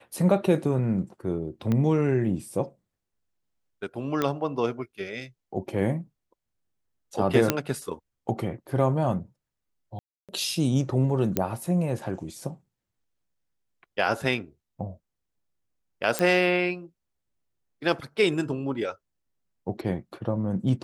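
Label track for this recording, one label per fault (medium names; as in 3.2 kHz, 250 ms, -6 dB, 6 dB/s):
1.720000	1.720000	pop -15 dBFS
4.220000	4.220000	pop -12 dBFS
7.500000	7.500000	pop -5 dBFS
9.990000	10.290000	dropout 297 ms
11.370000	11.370000	pop -9 dBFS
16.190000	16.190000	pop -8 dBFS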